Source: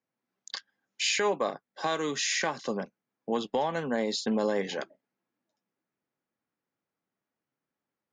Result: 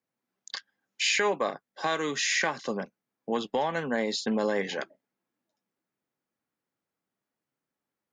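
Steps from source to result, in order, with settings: dynamic bell 1.9 kHz, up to +5 dB, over -43 dBFS, Q 1.3

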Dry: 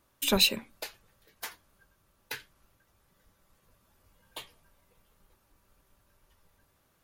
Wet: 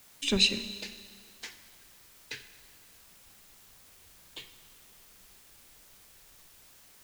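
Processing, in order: low-pass 7.4 kHz 24 dB/octave; high-order bell 890 Hz -11 dB; in parallel at -5.5 dB: word length cut 8-bit, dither triangular; on the sum: Schroeder reverb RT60 1.9 s, combs from 31 ms, DRR 11 dB; trim -4 dB

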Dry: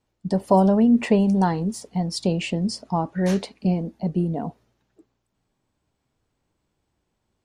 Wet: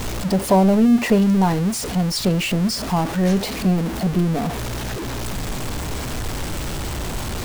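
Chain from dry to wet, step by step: jump at every zero crossing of -22.5 dBFS; bass shelf 63 Hz +10.5 dB

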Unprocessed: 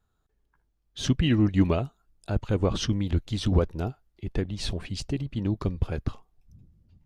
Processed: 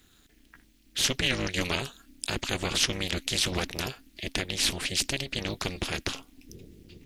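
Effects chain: AM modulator 270 Hz, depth 95%; resonant high shelf 1.6 kHz +12.5 dB, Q 1.5; spectrum-flattening compressor 2:1

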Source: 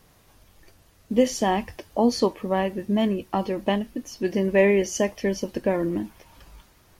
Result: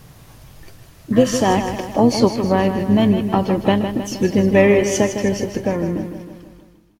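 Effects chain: fade out at the end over 2.26 s; peaking EQ 130 Hz +13.5 dB 0.54 oct; in parallel at +0.5 dB: compression 5:1, threshold -31 dBFS, peak gain reduction 16.5 dB; on the sum: harmony voices -12 st -12 dB, +5 st -16 dB; spectral replace 1.16–1.37 s, 950–2200 Hz after; on a send: feedback delay 157 ms, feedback 55%, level -9 dB; on the sum: trim +3 dB

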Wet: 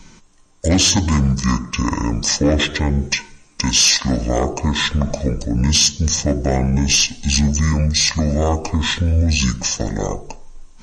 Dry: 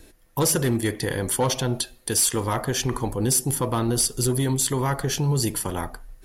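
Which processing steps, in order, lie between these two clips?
speed mistake 78 rpm record played at 45 rpm; trim +6.5 dB

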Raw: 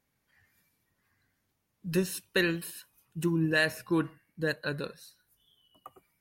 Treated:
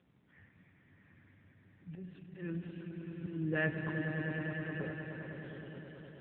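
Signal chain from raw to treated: 1.89–2.42 s: gate -55 dBFS, range -19 dB; bass shelf 480 Hz +10 dB; compression 2.5:1, threshold -28 dBFS, peak gain reduction 9 dB; slow attack 797 ms; distance through air 210 m; 3.89–4.67 s: static phaser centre 780 Hz, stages 8; feedback comb 60 Hz, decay 0.3 s, harmonics odd, mix 60%; echo with a slow build-up 103 ms, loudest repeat 5, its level -9 dB; trim +12.5 dB; AMR-NB 6.7 kbps 8 kHz

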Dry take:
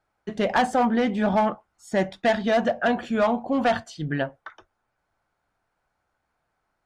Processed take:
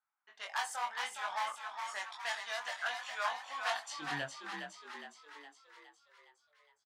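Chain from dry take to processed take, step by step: pre-emphasis filter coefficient 0.97; level-controlled noise filter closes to 2.1 kHz, open at -37.5 dBFS; gain riding within 3 dB 0.5 s; chorus 0.99 Hz, delay 20 ms, depth 2.7 ms; high-pass sweep 1 kHz -> 76 Hz, 3.68–4.37 s; frequency-shifting echo 413 ms, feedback 56%, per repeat +49 Hz, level -5.5 dB; trim +3.5 dB

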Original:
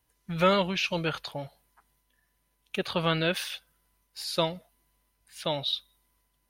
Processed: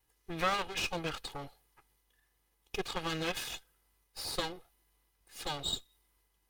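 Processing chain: comb filter that takes the minimum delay 2.4 ms; in parallel at -1.5 dB: compression, threshold -38 dBFS, peak gain reduction 16.5 dB; on the sum: trim -6 dB

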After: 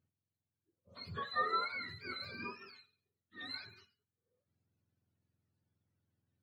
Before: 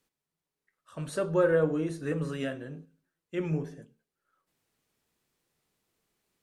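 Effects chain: spectrum inverted on a logarithmic axis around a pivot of 810 Hz; 2.69–3.48 s: transient shaper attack -11 dB, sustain +2 dB; trim -8.5 dB

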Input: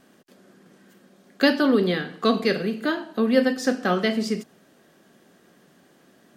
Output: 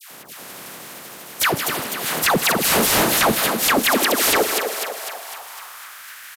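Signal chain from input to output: spectral contrast reduction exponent 0.11; inverted gate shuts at -10 dBFS, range -26 dB; peaking EQ 150 Hz -8.5 dB 1.6 oct; feedback delay 252 ms, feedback 57%, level -10.5 dB; high-pass sweep 150 Hz -> 1.6 kHz, 3.21–6.11 s; peaking EQ 5.8 kHz -8 dB 2.7 oct; phase dispersion lows, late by 113 ms, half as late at 1.1 kHz; sine folder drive 18 dB, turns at -12 dBFS; gate -46 dBFS, range -16 dB; resampled via 32 kHz; bit-crushed delay 156 ms, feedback 35%, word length 7-bit, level -11 dB

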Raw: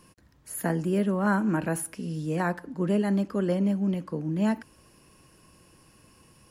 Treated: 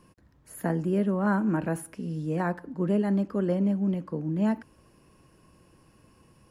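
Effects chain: treble shelf 2.1 kHz -9 dB

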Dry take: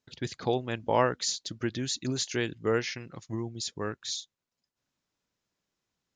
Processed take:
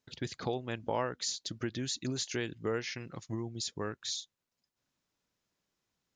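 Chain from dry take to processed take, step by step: compression 2:1, threshold -35 dBFS, peak gain reduction 9.5 dB

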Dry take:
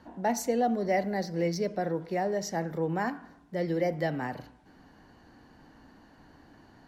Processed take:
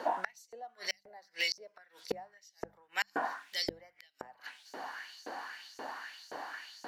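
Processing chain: LFO high-pass saw up 1.9 Hz 450–6700 Hz; inverted gate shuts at -33 dBFS, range -37 dB; hum notches 50/100/150/200 Hz; trim +14.5 dB

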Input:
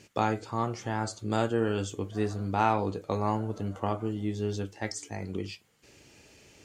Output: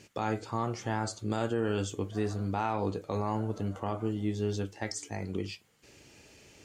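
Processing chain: peak limiter -19.5 dBFS, peak gain reduction 7.5 dB

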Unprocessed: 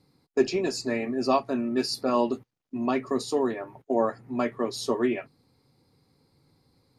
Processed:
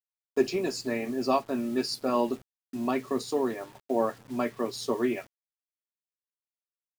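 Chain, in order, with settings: word length cut 8-bit, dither none; crossover distortion -54 dBFS; trim -2 dB

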